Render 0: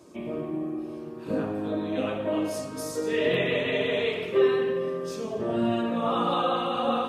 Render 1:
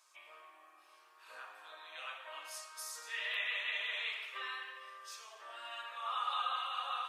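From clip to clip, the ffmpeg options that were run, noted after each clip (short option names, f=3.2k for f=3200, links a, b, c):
-af "highpass=f=1.1k:w=0.5412,highpass=f=1.1k:w=1.3066,volume=-5.5dB"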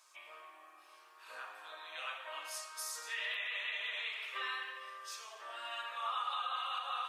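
-af "alimiter=level_in=7.5dB:limit=-24dB:level=0:latency=1:release=238,volume=-7.5dB,volume=3dB"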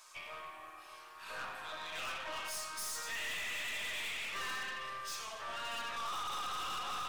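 -af "aeval=exprs='(tanh(224*val(0)+0.45)-tanh(0.45))/224':c=same,volume=9dB"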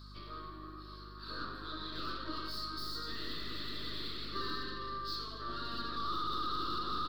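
-af "firequalizer=gain_entry='entry(170,0);entry(330,10);entry(500,-8);entry(810,-25);entry(1200,-3);entry(2400,-27);entry(4300,6);entry(6200,-28);entry(9700,-26);entry(15000,-14)':delay=0.05:min_phase=1,aeval=exprs='val(0)+0.00126*(sin(2*PI*50*n/s)+sin(2*PI*2*50*n/s)/2+sin(2*PI*3*50*n/s)/3+sin(2*PI*4*50*n/s)/4+sin(2*PI*5*50*n/s)/5)':c=same,volume=7.5dB"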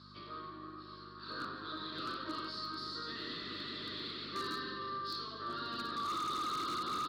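-af "highpass=130,lowpass=4.8k,aeval=exprs='0.0224*(abs(mod(val(0)/0.0224+3,4)-2)-1)':c=same,volume=1dB"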